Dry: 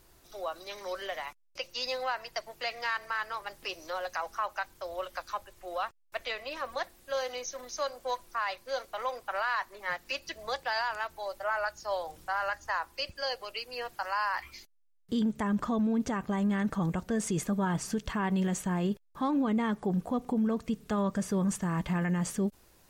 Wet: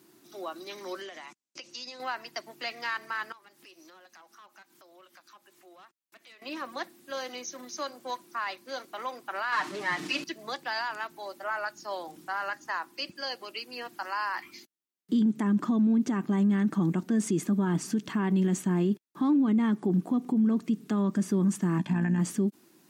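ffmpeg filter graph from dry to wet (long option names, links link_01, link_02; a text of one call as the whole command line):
ffmpeg -i in.wav -filter_complex "[0:a]asettb=1/sr,asplit=3[link_01][link_02][link_03];[link_01]atrim=end=1.014[link_04];[link_02]atrim=start=1.01:end=2,asetpts=PTS-STARTPTS,afade=type=in:duration=0.004:curve=qsin,afade=type=out:start_time=0.986:duration=0.004:curve=qsin,acompressor=threshold=-39dB:ratio=10:attack=3.2:release=140:knee=1:detection=peak,lowpass=frequency=7200:width_type=q:width=2.2[link_05];[link_03]atrim=start=1.996[link_06];[link_04][link_05]acrossfade=duration=0.004:curve1=hsin:curve2=qsin[link_07];[link_07][link_06]acrossfade=duration=0.004:curve1=qsin:curve2=hsin,asettb=1/sr,asplit=3[link_08][link_09][link_10];[link_08]atrim=end=3.324[link_11];[link_09]atrim=start=3.32:end=6.42,asetpts=PTS-STARTPTS,afade=type=in:duration=0.004:curve=qsin,afade=type=out:start_time=3.096:duration=0.004:curve=qsin,lowshelf=frequency=500:gain=-9,volume=32dB,asoftclip=hard,volume=-32dB,acompressor=threshold=-56dB:ratio=3:attack=3.2:release=140:knee=1:detection=peak[link_12];[link_10]atrim=start=6.416[link_13];[link_11][link_12]acrossfade=duration=0.004:curve1=hsin:curve2=qsin[link_14];[link_14][link_13]acrossfade=duration=0.004:curve1=qsin:curve2=hsin,asettb=1/sr,asplit=3[link_15][link_16][link_17];[link_15]atrim=end=9.524[link_18];[link_16]atrim=start=9.52:end=10.24,asetpts=PTS-STARTPTS,afade=type=in:duration=0.004:curve=qsin,afade=type=out:start_time=0.716:duration=0.004:curve=qsin,aeval=exprs='val(0)+0.5*0.015*sgn(val(0))':channel_layout=same,lowpass=6500,aecho=1:1:6.6:0.98,atrim=end_sample=31752[link_19];[link_17]atrim=start=10.236[link_20];[link_18][link_19]acrossfade=duration=0.004:curve1=hsin:curve2=qsin[link_21];[link_21][link_20]acrossfade=duration=0.004:curve1=qsin:curve2=hsin,asettb=1/sr,asplit=3[link_22][link_23][link_24];[link_22]atrim=end=21.784[link_25];[link_23]atrim=start=21.78:end=22.19,asetpts=PTS-STARTPTS,afade=type=in:duration=0.004:curve=qsin,afade=type=out:start_time=0.406:duration=0.004:curve=qsin,lowpass=9900,tremolo=f=60:d=0.571,aecho=1:1:1.2:0.57,atrim=end_sample=18081[link_26];[link_24]atrim=start=22.186[link_27];[link_25][link_26]acrossfade=duration=0.004:curve1=hsin:curve2=qsin[link_28];[link_28][link_27]acrossfade=duration=0.004:curve1=qsin:curve2=hsin,highpass=frequency=170:width=0.5412,highpass=frequency=170:width=1.3066,lowshelf=frequency=410:width_type=q:width=3:gain=6,alimiter=limit=-18.5dB:level=0:latency=1:release=89" out.wav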